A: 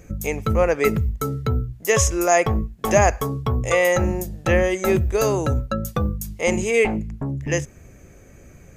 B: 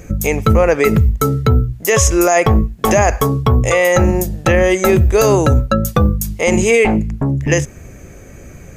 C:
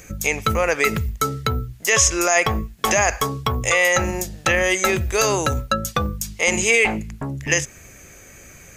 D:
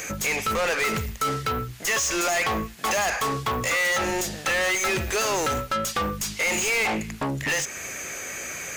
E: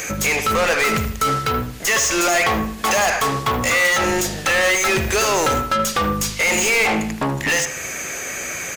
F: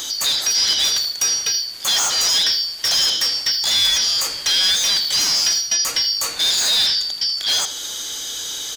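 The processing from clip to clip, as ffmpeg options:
ffmpeg -i in.wav -af "alimiter=level_in=11.5dB:limit=-1dB:release=50:level=0:latency=1,volume=-1.5dB" out.wav
ffmpeg -i in.wav -filter_complex "[0:a]tiltshelf=frequency=970:gain=-8,acrossover=split=7500[link_01][link_02];[link_02]acompressor=threshold=-29dB:ratio=6[link_03];[link_01][link_03]amix=inputs=2:normalize=0,volume=-4.5dB" out.wav
ffmpeg -i in.wav -filter_complex "[0:a]alimiter=limit=-9dB:level=0:latency=1:release=310,asplit=2[link_01][link_02];[link_02]highpass=frequency=720:poles=1,volume=29dB,asoftclip=type=tanh:threshold=-9dB[link_03];[link_01][link_03]amix=inputs=2:normalize=0,lowpass=frequency=6800:poles=1,volume=-6dB,volume=-8.5dB" out.wav
ffmpeg -i in.wav -filter_complex "[0:a]asplit=2[link_01][link_02];[link_02]adelay=78,lowpass=frequency=2000:poles=1,volume=-7.5dB,asplit=2[link_03][link_04];[link_04]adelay=78,lowpass=frequency=2000:poles=1,volume=0.41,asplit=2[link_05][link_06];[link_06]adelay=78,lowpass=frequency=2000:poles=1,volume=0.41,asplit=2[link_07][link_08];[link_08]adelay=78,lowpass=frequency=2000:poles=1,volume=0.41,asplit=2[link_09][link_10];[link_10]adelay=78,lowpass=frequency=2000:poles=1,volume=0.41[link_11];[link_01][link_03][link_05][link_07][link_09][link_11]amix=inputs=6:normalize=0,volume=6dB" out.wav
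ffmpeg -i in.wav -filter_complex "[0:a]afftfilt=real='real(if(lt(b,272),68*(eq(floor(b/68),0)*3+eq(floor(b/68),1)*2+eq(floor(b/68),2)*1+eq(floor(b/68),3)*0)+mod(b,68),b),0)':imag='imag(if(lt(b,272),68*(eq(floor(b/68),0)*3+eq(floor(b/68),1)*2+eq(floor(b/68),2)*1+eq(floor(b/68),3)*0)+mod(b,68),b),0)':win_size=2048:overlap=0.75,acrossover=split=640|2400[link_01][link_02][link_03];[link_01]asoftclip=type=tanh:threshold=-39.5dB[link_04];[link_04][link_02][link_03]amix=inputs=3:normalize=0" out.wav

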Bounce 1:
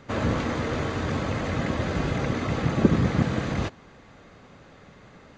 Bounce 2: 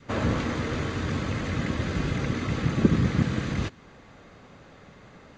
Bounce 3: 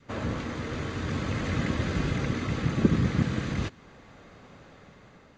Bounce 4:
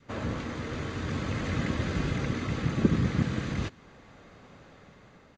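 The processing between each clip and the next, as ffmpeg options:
ffmpeg -i in.wav -af "adynamicequalizer=threshold=0.00631:dfrequency=710:dqfactor=1.1:tfrequency=710:tqfactor=1.1:attack=5:release=100:ratio=0.375:range=4:mode=cutabove:tftype=bell" out.wav
ffmpeg -i in.wav -af "dynaudnorm=framelen=510:gausssize=5:maxgain=9.5dB,volume=-6dB" out.wav
ffmpeg -i in.wav -af "aresample=32000,aresample=44100,volume=-1.5dB" out.wav

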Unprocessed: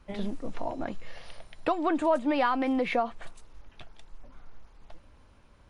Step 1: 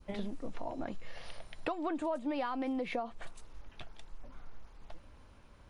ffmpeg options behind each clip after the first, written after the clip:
ffmpeg -i in.wav -af "adynamicequalizer=threshold=0.00891:dfrequency=1700:dqfactor=0.8:tfrequency=1700:tqfactor=0.8:attack=5:release=100:ratio=0.375:range=2.5:mode=cutabove:tftype=bell,acompressor=threshold=-36dB:ratio=2.5" out.wav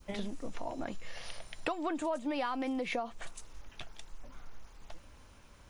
ffmpeg -i in.wav -af "highshelf=frequency=2200:gain=10,aexciter=amount=2.5:drive=2.4:freq=5800,highshelf=frequency=5300:gain=-7" out.wav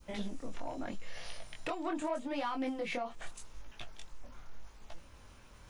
ffmpeg -i in.wav -af "areverse,acompressor=mode=upward:threshold=-50dB:ratio=2.5,areverse,asoftclip=type=tanh:threshold=-27.5dB,flanger=delay=17.5:depth=7.2:speed=0.81,volume=2.5dB" out.wav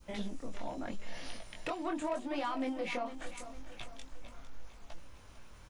ffmpeg -i in.wav -af "aecho=1:1:453|906|1359|1812|2265:0.224|0.105|0.0495|0.0232|0.0109" out.wav

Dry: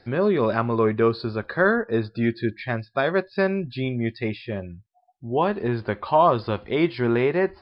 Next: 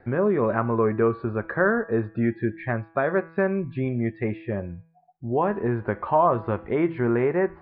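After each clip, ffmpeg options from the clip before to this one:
ffmpeg -i in.wav -filter_complex "[0:a]lowpass=frequency=2000:width=0.5412,lowpass=frequency=2000:width=1.3066,bandreject=frequency=163.9:width_type=h:width=4,bandreject=frequency=327.8:width_type=h:width=4,bandreject=frequency=491.7:width_type=h:width=4,bandreject=frequency=655.6:width_type=h:width=4,bandreject=frequency=819.5:width_type=h:width=4,bandreject=frequency=983.4:width_type=h:width=4,bandreject=frequency=1147.3:width_type=h:width=4,bandreject=frequency=1311.2:width_type=h:width=4,bandreject=frequency=1475.1:width_type=h:width=4,bandreject=frequency=1639:width_type=h:width=4,bandreject=frequency=1802.9:width_type=h:width=4,bandreject=frequency=1966.8:width_type=h:width=4,bandreject=frequency=2130.7:width_type=h:width=4,bandreject=frequency=2294.6:width_type=h:width=4,bandreject=frequency=2458.5:width_type=h:width=4,bandreject=frequency=2622.4:width_type=h:width=4,bandreject=frequency=2786.3:width_type=h:width=4,bandreject=frequency=2950.2:width_type=h:width=4,bandreject=frequency=3114.1:width_type=h:width=4,bandreject=frequency=3278:width_type=h:width=4,bandreject=frequency=3441.9:width_type=h:width=4,asplit=2[link_01][link_02];[link_02]acompressor=threshold=-28dB:ratio=6,volume=2dB[link_03];[link_01][link_03]amix=inputs=2:normalize=0,volume=-4dB" out.wav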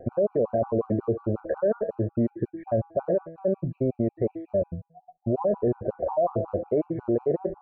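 ffmpeg -i in.wav -af "lowpass=frequency=600:width_type=q:width=4.9,alimiter=limit=-20.5dB:level=0:latency=1:release=20,afftfilt=real='re*gt(sin(2*PI*5.5*pts/sr)*(1-2*mod(floor(b*sr/1024/770),2)),0)':imag='im*gt(sin(2*PI*5.5*pts/sr)*(1-2*mod(floor(b*sr/1024/770),2)),0)':win_size=1024:overlap=0.75,volume=5dB" out.wav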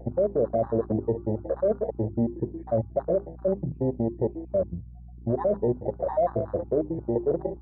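ffmpeg -i in.wav -af "bandreject=frequency=50:width_type=h:width=6,bandreject=frequency=100:width_type=h:width=6,bandreject=frequency=150:width_type=h:width=6,bandreject=frequency=200:width_type=h:width=6,bandreject=frequency=250:width_type=h:width=6,bandreject=frequency=300:width_type=h:width=6,bandreject=frequency=350:width_type=h:width=6,bandreject=frequency=400:width_type=h:width=6,aeval=exprs='val(0)+0.00794*(sin(2*PI*60*n/s)+sin(2*PI*2*60*n/s)/2+sin(2*PI*3*60*n/s)/3+sin(2*PI*4*60*n/s)/4+sin(2*PI*5*60*n/s)/5)':channel_layout=same,afwtdn=0.0251" out.wav

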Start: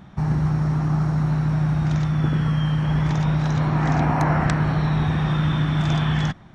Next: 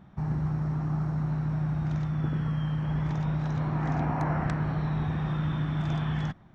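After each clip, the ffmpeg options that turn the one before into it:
ffmpeg -i in.wav -af "highshelf=frequency=2600:gain=-8.5,volume=-8dB" out.wav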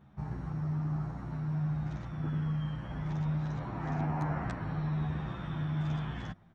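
ffmpeg -i in.wav -filter_complex "[0:a]asplit=2[link_01][link_02];[link_02]adelay=10.3,afreqshift=-1.2[link_03];[link_01][link_03]amix=inputs=2:normalize=1,volume=-2.5dB" out.wav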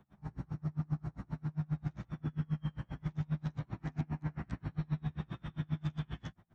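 ffmpeg -i in.wav -filter_complex "[0:a]acrossover=split=160|340|1800[link_01][link_02][link_03][link_04];[link_03]acompressor=threshold=-51dB:ratio=6[link_05];[link_01][link_02][link_05][link_04]amix=inputs=4:normalize=0,aeval=exprs='val(0)*pow(10,-34*(0.5-0.5*cos(2*PI*7.5*n/s))/20)':channel_layout=same,volume=2.5dB" out.wav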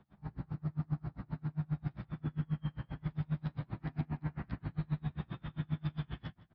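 ffmpeg -i in.wav -af "aresample=11025,aresample=44100,aecho=1:1:160:0.1" out.wav

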